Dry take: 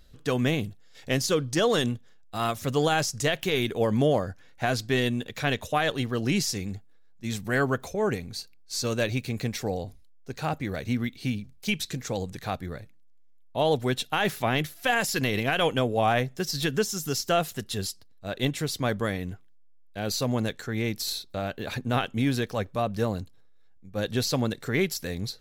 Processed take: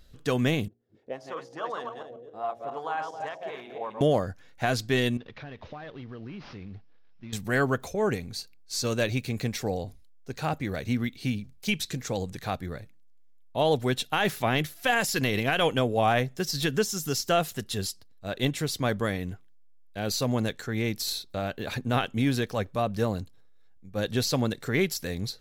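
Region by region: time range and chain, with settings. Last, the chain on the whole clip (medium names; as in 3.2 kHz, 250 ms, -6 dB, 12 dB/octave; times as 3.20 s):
0.68–4.01 s: backward echo that repeats 135 ms, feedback 44%, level -4 dB + de-hum 58.77 Hz, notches 14 + auto-wah 350–1000 Hz, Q 3.1, up, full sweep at -20 dBFS
5.17–7.33 s: CVSD coder 32 kbps + compression 5:1, threshold -38 dBFS + distance through air 240 m
whole clip: none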